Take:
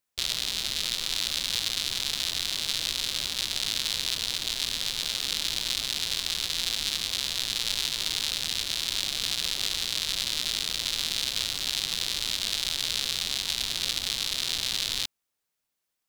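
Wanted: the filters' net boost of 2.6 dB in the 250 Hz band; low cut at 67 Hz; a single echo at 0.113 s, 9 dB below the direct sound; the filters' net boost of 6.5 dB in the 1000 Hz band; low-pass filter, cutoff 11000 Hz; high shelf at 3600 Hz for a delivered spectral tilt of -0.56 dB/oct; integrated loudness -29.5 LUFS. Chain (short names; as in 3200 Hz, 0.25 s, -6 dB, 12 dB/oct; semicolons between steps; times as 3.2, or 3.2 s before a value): HPF 67 Hz; LPF 11000 Hz; bell 250 Hz +3 dB; bell 1000 Hz +7.5 dB; high shelf 3600 Hz +6 dB; echo 0.113 s -9 dB; gain -6.5 dB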